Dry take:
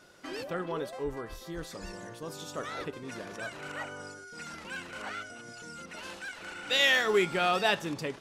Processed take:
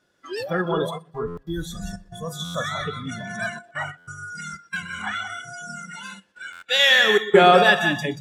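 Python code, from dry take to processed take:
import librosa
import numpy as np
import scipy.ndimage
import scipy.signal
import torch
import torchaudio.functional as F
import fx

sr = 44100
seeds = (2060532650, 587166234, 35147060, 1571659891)

y = fx.rider(x, sr, range_db=3, speed_s=2.0)
y = y + 10.0 ** (-6.5 / 20.0) * np.pad(y, (int(183 * sr / 1000.0), 0))[:len(y)]
y = fx.step_gate(y, sr, bpm=92, pattern='xxxxxx.x.xxx.xxx', floor_db=-60.0, edge_ms=4.5)
y = fx.peak_eq(y, sr, hz=520.0, db=10.0, octaves=2.6, at=(7.17, 7.62), fade=0.02)
y = fx.echo_feedback(y, sr, ms=123, feedback_pct=47, wet_db=-12)
y = fx.noise_reduce_blind(y, sr, reduce_db=21)
y = fx.peak_eq(y, sr, hz=180.0, db=4.0, octaves=2.1)
y = fx.small_body(y, sr, hz=(1700.0, 3400.0), ring_ms=45, db=13)
y = fx.buffer_glitch(y, sr, at_s=(1.27, 2.44, 3.97, 6.52), block=512, repeats=8)
y = y * 10.0 ** (6.0 / 20.0)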